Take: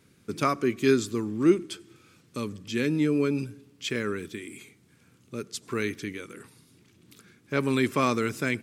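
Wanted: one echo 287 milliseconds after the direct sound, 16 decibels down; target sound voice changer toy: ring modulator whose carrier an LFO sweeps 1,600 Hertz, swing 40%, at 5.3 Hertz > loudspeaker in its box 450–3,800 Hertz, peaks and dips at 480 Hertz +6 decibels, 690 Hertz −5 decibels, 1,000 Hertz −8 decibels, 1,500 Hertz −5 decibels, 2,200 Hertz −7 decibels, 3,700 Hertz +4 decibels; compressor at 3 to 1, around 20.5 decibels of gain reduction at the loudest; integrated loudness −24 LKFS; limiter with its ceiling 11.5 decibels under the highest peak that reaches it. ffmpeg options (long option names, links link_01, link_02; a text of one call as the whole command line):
ffmpeg -i in.wav -af "acompressor=threshold=-45dB:ratio=3,alimiter=level_in=12.5dB:limit=-24dB:level=0:latency=1,volume=-12.5dB,aecho=1:1:287:0.158,aeval=exprs='val(0)*sin(2*PI*1600*n/s+1600*0.4/5.3*sin(2*PI*5.3*n/s))':channel_layout=same,highpass=450,equalizer=frequency=480:width_type=q:width=4:gain=6,equalizer=frequency=690:width_type=q:width=4:gain=-5,equalizer=frequency=1000:width_type=q:width=4:gain=-8,equalizer=frequency=1500:width_type=q:width=4:gain=-5,equalizer=frequency=2200:width_type=q:width=4:gain=-7,equalizer=frequency=3700:width_type=q:width=4:gain=4,lowpass=frequency=3800:width=0.5412,lowpass=frequency=3800:width=1.3066,volume=29.5dB" out.wav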